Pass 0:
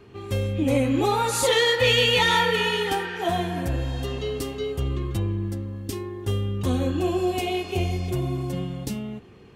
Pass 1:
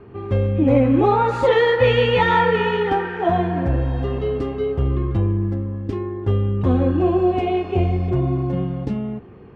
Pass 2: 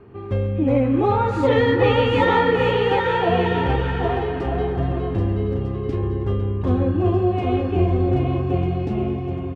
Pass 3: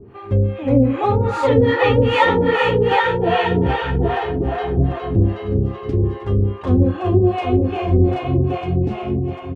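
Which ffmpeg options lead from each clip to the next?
-af "lowpass=1500,volume=2.11"
-af "aecho=1:1:780|1248|1529|1697|1798:0.631|0.398|0.251|0.158|0.1,volume=0.708"
-filter_complex "[0:a]acrossover=split=530[s0][s1];[s0]aeval=exprs='val(0)*(1-1/2+1/2*cos(2*PI*2.5*n/s))':c=same[s2];[s1]aeval=exprs='val(0)*(1-1/2-1/2*cos(2*PI*2.5*n/s))':c=same[s3];[s2][s3]amix=inputs=2:normalize=0,volume=2.37"

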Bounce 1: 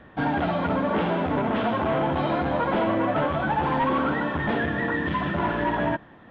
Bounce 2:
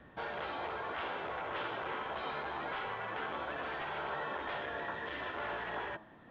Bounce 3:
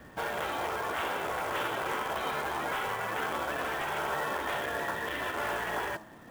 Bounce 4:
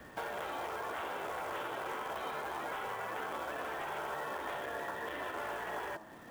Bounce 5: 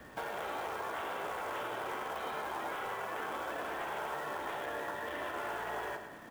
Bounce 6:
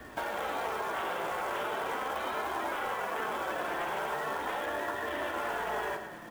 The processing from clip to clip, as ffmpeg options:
-filter_complex "[0:a]bandreject=f=106.9:t=h:w=4,bandreject=f=213.8:t=h:w=4,bandreject=f=320.7:t=h:w=4,bandreject=f=427.6:t=h:w=4,bandreject=f=534.5:t=h:w=4,bandreject=f=641.4:t=h:w=4,bandreject=f=748.3:t=h:w=4,bandreject=f=855.2:t=h:w=4,bandreject=f=962.1:t=h:w=4,bandreject=f=1069:t=h:w=4,bandreject=f=1175.9:t=h:w=4,afftfilt=real='re*lt(hypot(re,im),0.2)':imag='im*lt(hypot(re,im),0.2)':win_size=1024:overlap=0.75,acrossover=split=330[s0][s1];[s0]acompressor=threshold=0.00447:ratio=6[s2];[s2][s1]amix=inputs=2:normalize=0,volume=0.422"
-af "acrusher=bits=3:mode=log:mix=0:aa=0.000001,volume=2"
-filter_complex "[0:a]acrossover=split=280|1300[s0][s1][s2];[s0]acompressor=threshold=0.00112:ratio=4[s3];[s1]acompressor=threshold=0.0112:ratio=4[s4];[s2]acompressor=threshold=0.00447:ratio=4[s5];[s3][s4][s5]amix=inputs=3:normalize=0"
-af "aecho=1:1:105|210|315|420|525|630|735:0.376|0.207|0.114|0.0625|0.0344|0.0189|0.0104"
-af "flanger=delay=2.7:depth=3.2:regen=-44:speed=0.4:shape=triangular,volume=2.66"

